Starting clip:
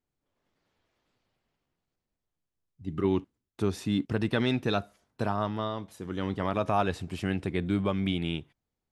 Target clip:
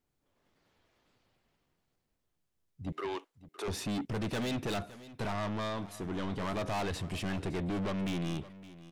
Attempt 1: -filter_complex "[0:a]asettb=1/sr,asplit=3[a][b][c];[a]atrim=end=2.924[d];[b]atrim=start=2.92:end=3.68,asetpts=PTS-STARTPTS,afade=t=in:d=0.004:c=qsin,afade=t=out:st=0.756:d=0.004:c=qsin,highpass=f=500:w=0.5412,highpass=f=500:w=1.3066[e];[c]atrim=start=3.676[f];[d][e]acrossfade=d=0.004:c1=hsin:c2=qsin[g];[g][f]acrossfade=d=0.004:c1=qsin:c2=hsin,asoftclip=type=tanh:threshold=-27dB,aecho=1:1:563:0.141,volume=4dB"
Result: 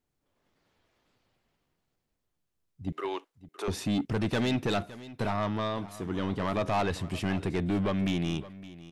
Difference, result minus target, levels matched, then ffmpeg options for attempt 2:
soft clip: distortion -5 dB
-filter_complex "[0:a]asettb=1/sr,asplit=3[a][b][c];[a]atrim=end=2.924[d];[b]atrim=start=2.92:end=3.68,asetpts=PTS-STARTPTS,afade=t=in:d=0.004:c=qsin,afade=t=out:st=0.756:d=0.004:c=qsin,highpass=f=500:w=0.5412,highpass=f=500:w=1.3066[e];[c]atrim=start=3.676[f];[d][e]acrossfade=d=0.004:c1=hsin:c2=qsin[g];[g][f]acrossfade=d=0.004:c1=qsin:c2=hsin,asoftclip=type=tanh:threshold=-35.5dB,aecho=1:1:563:0.141,volume=4dB"

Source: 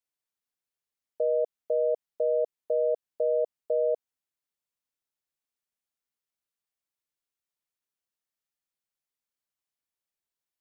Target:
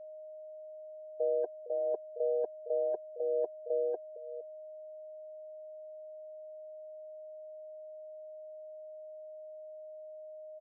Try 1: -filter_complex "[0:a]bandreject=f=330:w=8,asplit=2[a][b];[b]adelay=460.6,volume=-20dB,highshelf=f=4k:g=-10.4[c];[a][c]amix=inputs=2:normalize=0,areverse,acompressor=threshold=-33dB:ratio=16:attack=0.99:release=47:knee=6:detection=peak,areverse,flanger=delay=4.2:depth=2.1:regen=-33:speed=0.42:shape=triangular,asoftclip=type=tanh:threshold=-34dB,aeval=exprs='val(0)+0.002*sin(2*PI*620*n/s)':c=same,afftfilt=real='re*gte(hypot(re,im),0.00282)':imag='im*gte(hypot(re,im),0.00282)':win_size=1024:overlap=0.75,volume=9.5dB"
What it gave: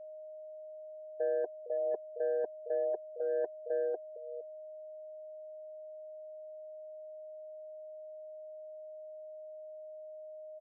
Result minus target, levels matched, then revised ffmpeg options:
soft clip: distortion +13 dB
-filter_complex "[0:a]bandreject=f=330:w=8,asplit=2[a][b];[b]adelay=460.6,volume=-20dB,highshelf=f=4k:g=-10.4[c];[a][c]amix=inputs=2:normalize=0,areverse,acompressor=threshold=-33dB:ratio=16:attack=0.99:release=47:knee=6:detection=peak,areverse,flanger=delay=4.2:depth=2.1:regen=-33:speed=0.42:shape=triangular,asoftclip=type=tanh:threshold=-26.5dB,aeval=exprs='val(0)+0.002*sin(2*PI*620*n/s)':c=same,afftfilt=real='re*gte(hypot(re,im),0.00282)':imag='im*gte(hypot(re,im),0.00282)':win_size=1024:overlap=0.75,volume=9.5dB"

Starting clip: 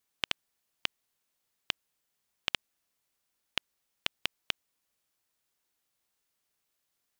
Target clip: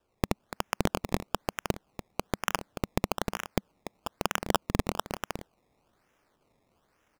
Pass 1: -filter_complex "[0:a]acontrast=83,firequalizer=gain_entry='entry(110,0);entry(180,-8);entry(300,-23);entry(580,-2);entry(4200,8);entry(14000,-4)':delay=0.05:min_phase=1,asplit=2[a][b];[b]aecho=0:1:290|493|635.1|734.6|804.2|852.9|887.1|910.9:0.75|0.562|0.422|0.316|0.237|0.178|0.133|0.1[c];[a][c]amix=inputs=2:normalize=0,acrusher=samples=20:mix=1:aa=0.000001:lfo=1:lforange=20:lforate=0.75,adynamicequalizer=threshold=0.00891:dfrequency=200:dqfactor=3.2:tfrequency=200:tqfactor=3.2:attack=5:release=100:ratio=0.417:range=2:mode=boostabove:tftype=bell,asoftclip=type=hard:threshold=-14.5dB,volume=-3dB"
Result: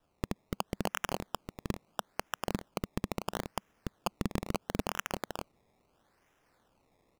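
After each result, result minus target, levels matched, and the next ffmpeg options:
hard clip: distortion +7 dB; decimation with a swept rate: distortion +5 dB
-filter_complex "[0:a]acontrast=83,firequalizer=gain_entry='entry(110,0);entry(180,-8);entry(300,-23);entry(580,-2);entry(4200,8);entry(14000,-4)':delay=0.05:min_phase=1,asplit=2[a][b];[b]aecho=0:1:290|493|635.1|734.6|804.2|852.9|887.1|910.9:0.75|0.562|0.422|0.316|0.237|0.178|0.133|0.1[c];[a][c]amix=inputs=2:normalize=0,acrusher=samples=20:mix=1:aa=0.000001:lfo=1:lforange=20:lforate=0.75,adynamicequalizer=threshold=0.00891:dfrequency=200:dqfactor=3.2:tfrequency=200:tqfactor=3.2:attack=5:release=100:ratio=0.417:range=2:mode=boostabove:tftype=bell,asoftclip=type=hard:threshold=-6.5dB,volume=-3dB"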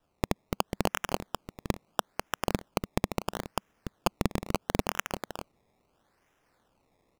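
decimation with a swept rate: distortion +5 dB
-filter_complex "[0:a]acontrast=83,firequalizer=gain_entry='entry(110,0);entry(180,-8);entry(300,-23);entry(580,-2);entry(4200,8);entry(14000,-4)':delay=0.05:min_phase=1,asplit=2[a][b];[b]aecho=0:1:290|493|635.1|734.6|804.2|852.9|887.1|910.9:0.75|0.562|0.422|0.316|0.237|0.178|0.133|0.1[c];[a][c]amix=inputs=2:normalize=0,acrusher=samples=20:mix=1:aa=0.000001:lfo=1:lforange=20:lforate=1.1,adynamicequalizer=threshold=0.00891:dfrequency=200:dqfactor=3.2:tfrequency=200:tqfactor=3.2:attack=5:release=100:ratio=0.417:range=2:mode=boostabove:tftype=bell,asoftclip=type=hard:threshold=-6.5dB,volume=-3dB"

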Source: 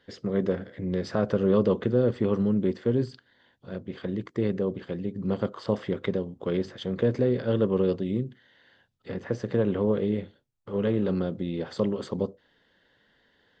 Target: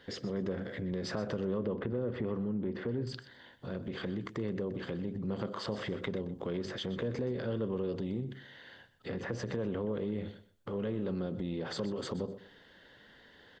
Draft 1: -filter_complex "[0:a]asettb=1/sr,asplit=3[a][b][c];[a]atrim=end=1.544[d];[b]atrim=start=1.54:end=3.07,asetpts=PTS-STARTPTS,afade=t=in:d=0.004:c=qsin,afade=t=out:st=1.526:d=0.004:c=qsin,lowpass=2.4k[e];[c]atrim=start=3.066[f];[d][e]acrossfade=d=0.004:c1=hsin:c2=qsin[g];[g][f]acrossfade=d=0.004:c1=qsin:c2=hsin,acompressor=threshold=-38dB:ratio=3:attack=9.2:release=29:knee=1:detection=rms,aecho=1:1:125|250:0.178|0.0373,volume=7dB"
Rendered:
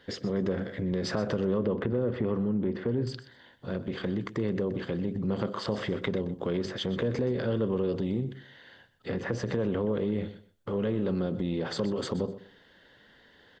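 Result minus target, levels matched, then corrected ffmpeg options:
compressor: peak gain reduction -6 dB
-filter_complex "[0:a]asettb=1/sr,asplit=3[a][b][c];[a]atrim=end=1.544[d];[b]atrim=start=1.54:end=3.07,asetpts=PTS-STARTPTS,afade=t=in:d=0.004:c=qsin,afade=t=out:st=1.526:d=0.004:c=qsin,lowpass=2.4k[e];[c]atrim=start=3.066[f];[d][e]acrossfade=d=0.004:c1=hsin:c2=qsin[g];[g][f]acrossfade=d=0.004:c1=qsin:c2=hsin,acompressor=threshold=-47dB:ratio=3:attack=9.2:release=29:knee=1:detection=rms,aecho=1:1:125|250:0.178|0.0373,volume=7dB"

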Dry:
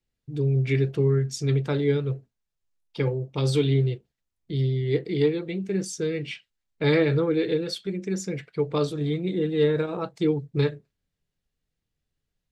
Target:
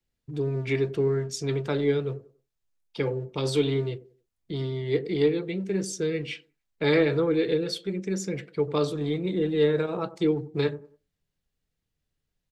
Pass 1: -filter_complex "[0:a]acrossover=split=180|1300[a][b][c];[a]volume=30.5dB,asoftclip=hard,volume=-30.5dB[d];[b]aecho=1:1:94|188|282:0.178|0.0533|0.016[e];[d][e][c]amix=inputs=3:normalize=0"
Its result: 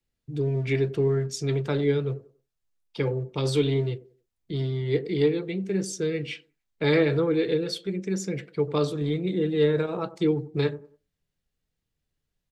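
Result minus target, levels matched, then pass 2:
overloaded stage: distortion -4 dB
-filter_complex "[0:a]acrossover=split=180|1300[a][b][c];[a]volume=37.5dB,asoftclip=hard,volume=-37.5dB[d];[b]aecho=1:1:94|188|282:0.178|0.0533|0.016[e];[d][e][c]amix=inputs=3:normalize=0"

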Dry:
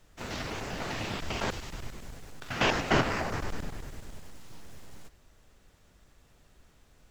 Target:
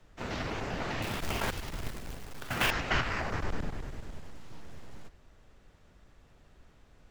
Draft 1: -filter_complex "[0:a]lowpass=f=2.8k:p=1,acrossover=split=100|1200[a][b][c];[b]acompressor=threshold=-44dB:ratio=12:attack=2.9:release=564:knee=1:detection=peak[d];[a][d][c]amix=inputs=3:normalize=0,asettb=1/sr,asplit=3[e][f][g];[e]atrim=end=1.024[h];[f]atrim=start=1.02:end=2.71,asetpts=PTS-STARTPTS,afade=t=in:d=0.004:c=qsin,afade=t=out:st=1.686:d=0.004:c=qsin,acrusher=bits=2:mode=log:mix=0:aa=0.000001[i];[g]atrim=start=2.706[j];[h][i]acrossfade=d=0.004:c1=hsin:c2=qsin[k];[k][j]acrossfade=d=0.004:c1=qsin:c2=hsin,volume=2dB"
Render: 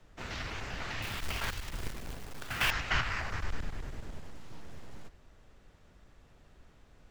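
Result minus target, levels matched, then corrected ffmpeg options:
compressor: peak gain reduction +10 dB
-filter_complex "[0:a]lowpass=f=2.8k:p=1,acrossover=split=100|1200[a][b][c];[b]acompressor=threshold=-33dB:ratio=12:attack=2.9:release=564:knee=1:detection=peak[d];[a][d][c]amix=inputs=3:normalize=0,asettb=1/sr,asplit=3[e][f][g];[e]atrim=end=1.024[h];[f]atrim=start=1.02:end=2.71,asetpts=PTS-STARTPTS,afade=t=in:d=0.004:c=qsin,afade=t=out:st=1.686:d=0.004:c=qsin,acrusher=bits=2:mode=log:mix=0:aa=0.000001[i];[g]atrim=start=2.706[j];[h][i]acrossfade=d=0.004:c1=hsin:c2=qsin[k];[k][j]acrossfade=d=0.004:c1=qsin:c2=hsin,volume=2dB"

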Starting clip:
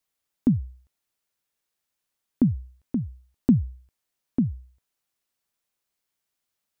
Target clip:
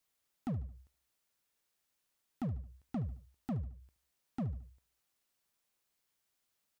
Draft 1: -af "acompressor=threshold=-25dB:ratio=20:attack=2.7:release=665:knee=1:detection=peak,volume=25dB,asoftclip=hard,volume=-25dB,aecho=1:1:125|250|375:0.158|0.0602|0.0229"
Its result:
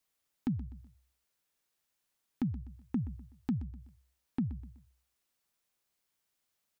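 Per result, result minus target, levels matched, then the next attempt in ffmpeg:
echo 52 ms late; overloaded stage: distortion -6 dB
-af "acompressor=threshold=-25dB:ratio=20:attack=2.7:release=665:knee=1:detection=peak,volume=25dB,asoftclip=hard,volume=-25dB,aecho=1:1:73|146|219:0.158|0.0602|0.0229"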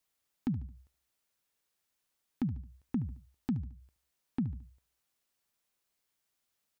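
overloaded stage: distortion -6 dB
-af "acompressor=threshold=-25dB:ratio=20:attack=2.7:release=665:knee=1:detection=peak,volume=33dB,asoftclip=hard,volume=-33dB,aecho=1:1:73|146|219:0.158|0.0602|0.0229"

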